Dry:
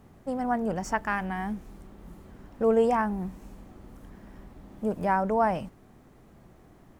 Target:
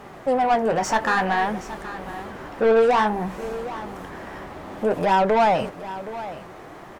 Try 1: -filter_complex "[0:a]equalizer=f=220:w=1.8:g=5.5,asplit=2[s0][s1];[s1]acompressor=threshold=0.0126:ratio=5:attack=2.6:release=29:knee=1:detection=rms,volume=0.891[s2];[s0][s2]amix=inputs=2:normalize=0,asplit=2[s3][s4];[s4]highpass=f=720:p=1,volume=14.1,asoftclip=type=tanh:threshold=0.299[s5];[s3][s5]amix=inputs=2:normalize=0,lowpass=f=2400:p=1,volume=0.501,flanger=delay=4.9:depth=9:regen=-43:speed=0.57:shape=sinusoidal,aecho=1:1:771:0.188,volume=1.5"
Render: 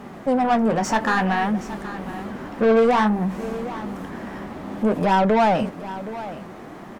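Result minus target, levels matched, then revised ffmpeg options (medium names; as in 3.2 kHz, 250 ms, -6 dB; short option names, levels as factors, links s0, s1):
250 Hz band +6.5 dB
-filter_complex "[0:a]equalizer=f=220:w=1.8:g=-6,asplit=2[s0][s1];[s1]acompressor=threshold=0.0126:ratio=5:attack=2.6:release=29:knee=1:detection=rms,volume=0.891[s2];[s0][s2]amix=inputs=2:normalize=0,asplit=2[s3][s4];[s4]highpass=f=720:p=1,volume=14.1,asoftclip=type=tanh:threshold=0.299[s5];[s3][s5]amix=inputs=2:normalize=0,lowpass=f=2400:p=1,volume=0.501,flanger=delay=4.9:depth=9:regen=-43:speed=0.57:shape=sinusoidal,aecho=1:1:771:0.188,volume=1.5"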